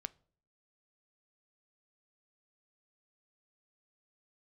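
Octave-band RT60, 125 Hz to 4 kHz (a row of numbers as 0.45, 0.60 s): 0.65, 0.70, 0.60, 0.45, 0.35, 0.35 s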